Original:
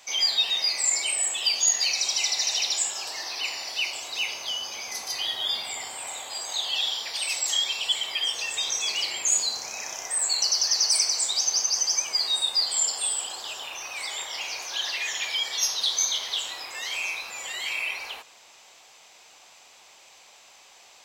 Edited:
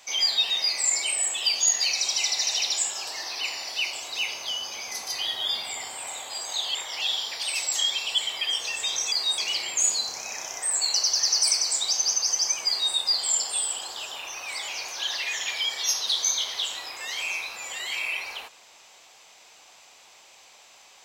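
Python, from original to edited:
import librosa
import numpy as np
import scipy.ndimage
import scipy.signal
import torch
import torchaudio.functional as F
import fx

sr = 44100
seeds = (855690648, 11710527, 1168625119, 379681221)

y = fx.edit(x, sr, fx.duplicate(start_s=12.16, length_s=0.26, to_s=8.86),
    fx.move(start_s=14.16, length_s=0.26, to_s=6.75), tone=tone)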